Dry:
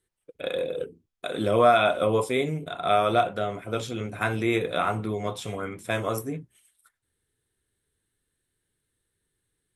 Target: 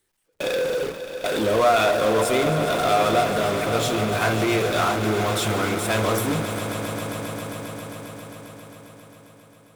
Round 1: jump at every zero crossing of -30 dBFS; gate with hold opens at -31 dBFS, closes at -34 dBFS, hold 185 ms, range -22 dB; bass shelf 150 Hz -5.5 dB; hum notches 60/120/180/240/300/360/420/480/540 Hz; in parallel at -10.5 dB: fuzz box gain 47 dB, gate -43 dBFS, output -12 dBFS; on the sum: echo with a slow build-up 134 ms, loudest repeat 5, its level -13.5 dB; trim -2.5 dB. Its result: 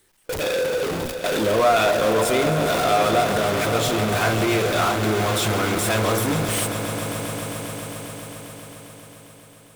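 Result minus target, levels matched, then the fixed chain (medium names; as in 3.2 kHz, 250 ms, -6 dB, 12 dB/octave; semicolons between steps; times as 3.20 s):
jump at every zero crossing: distortion +10 dB
jump at every zero crossing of -41.5 dBFS; gate with hold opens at -31 dBFS, closes at -34 dBFS, hold 185 ms, range -22 dB; bass shelf 150 Hz -5.5 dB; hum notches 60/120/180/240/300/360/420/480/540 Hz; in parallel at -10.5 dB: fuzz box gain 47 dB, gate -43 dBFS, output -12 dBFS; on the sum: echo with a slow build-up 134 ms, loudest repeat 5, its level -13.5 dB; trim -2.5 dB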